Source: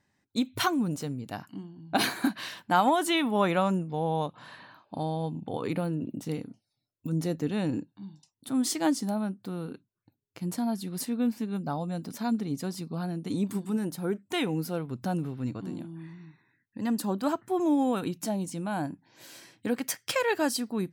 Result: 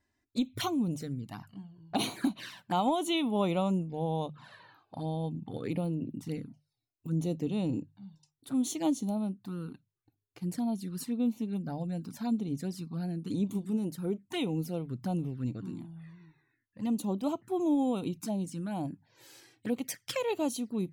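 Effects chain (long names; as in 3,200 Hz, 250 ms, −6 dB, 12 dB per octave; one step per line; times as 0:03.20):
low-shelf EQ 87 Hz +10.5 dB
mains-hum notches 50/100/150 Hz
flanger swept by the level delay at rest 3 ms, full sweep at −25.5 dBFS
level −3 dB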